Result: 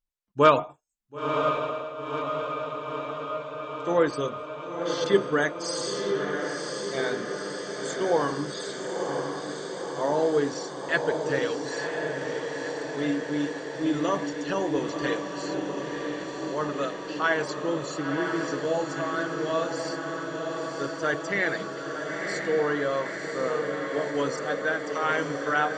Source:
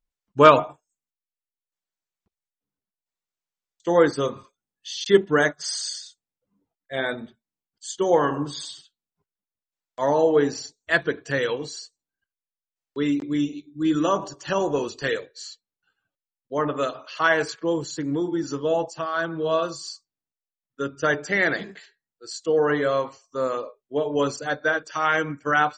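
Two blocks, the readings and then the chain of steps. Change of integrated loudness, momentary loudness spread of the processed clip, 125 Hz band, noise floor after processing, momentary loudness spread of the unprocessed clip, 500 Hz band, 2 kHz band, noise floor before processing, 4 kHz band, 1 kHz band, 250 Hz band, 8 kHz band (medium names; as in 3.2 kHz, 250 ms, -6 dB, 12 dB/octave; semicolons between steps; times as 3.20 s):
-4.5 dB, 8 LU, -3.0 dB, -37 dBFS, 16 LU, -2.5 dB, -3.0 dB, under -85 dBFS, -2.5 dB, -3.0 dB, -2.5 dB, -2.5 dB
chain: echo that smears into a reverb 991 ms, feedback 73%, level -4.5 dB; trim -5 dB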